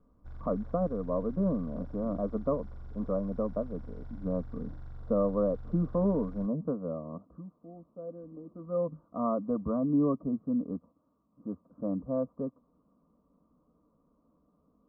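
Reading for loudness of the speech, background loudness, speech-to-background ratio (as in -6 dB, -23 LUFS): -32.5 LUFS, -49.0 LUFS, 16.5 dB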